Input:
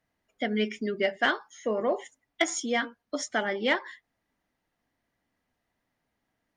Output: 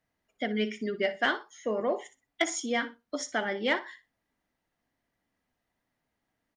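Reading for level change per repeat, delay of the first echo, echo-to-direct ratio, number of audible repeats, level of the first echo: −15.0 dB, 60 ms, −15.0 dB, 2, −15.0 dB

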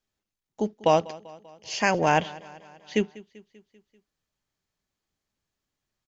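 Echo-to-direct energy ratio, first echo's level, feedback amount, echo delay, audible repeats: −18.5 dB, −20.5 dB, 58%, 195 ms, 4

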